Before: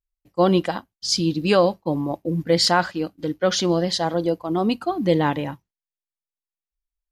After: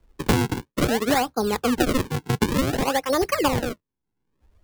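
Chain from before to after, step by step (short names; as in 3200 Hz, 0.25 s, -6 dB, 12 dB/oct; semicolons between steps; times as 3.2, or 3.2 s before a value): speed glide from 129% -> 178%; decimation with a swept rate 41×, swing 160% 0.55 Hz; three-band squash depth 100%; gain -2 dB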